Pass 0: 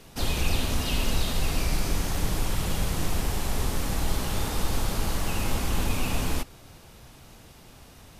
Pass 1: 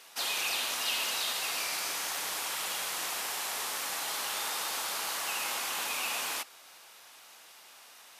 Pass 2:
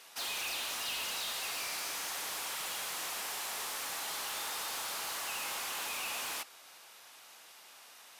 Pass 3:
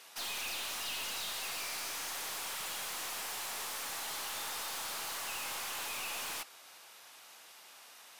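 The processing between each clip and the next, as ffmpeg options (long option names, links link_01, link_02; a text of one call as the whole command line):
ffmpeg -i in.wav -af "highpass=960,volume=1.5dB" out.wav
ffmpeg -i in.wav -af "asoftclip=type=tanh:threshold=-31.5dB,volume=-1.5dB" out.wav
ffmpeg -i in.wav -af "aeval=exprs='clip(val(0),-1,0.01)':channel_layout=same" out.wav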